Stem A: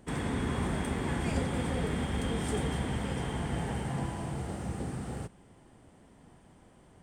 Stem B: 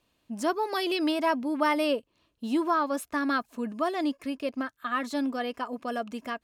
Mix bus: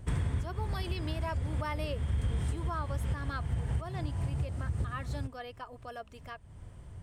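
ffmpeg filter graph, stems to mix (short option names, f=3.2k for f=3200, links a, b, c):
-filter_complex "[0:a]lowshelf=f=150:t=q:w=1.5:g=13.5,bandreject=f=790:w=12,volume=1dB[a];[1:a]equalizer=f=210:t=o:w=0.67:g=-15,volume=-10dB,asplit=2[b][c];[c]apad=whole_len=309642[d];[a][d]sidechaincompress=threshold=-51dB:ratio=4:attack=5.6:release=257[e];[e][b]amix=inputs=2:normalize=0,acompressor=threshold=-28dB:ratio=6"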